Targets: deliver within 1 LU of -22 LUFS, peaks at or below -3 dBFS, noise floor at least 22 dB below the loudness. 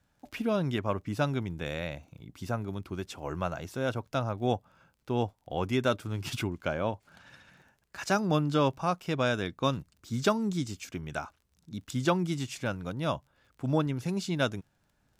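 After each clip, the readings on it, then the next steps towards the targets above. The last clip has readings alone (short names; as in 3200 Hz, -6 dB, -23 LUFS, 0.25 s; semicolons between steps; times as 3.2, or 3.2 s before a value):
ticks 23/s; loudness -31.5 LUFS; peak -13.0 dBFS; loudness target -22.0 LUFS
-> de-click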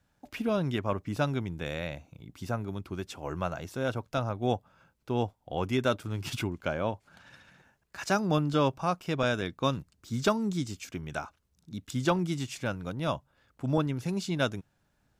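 ticks 0/s; loudness -31.5 LUFS; peak -13.0 dBFS; loudness target -22.0 LUFS
-> gain +9.5 dB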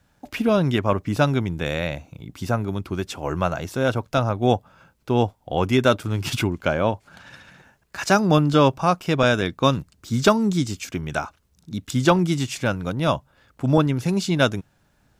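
loudness -22.0 LUFS; peak -3.5 dBFS; noise floor -64 dBFS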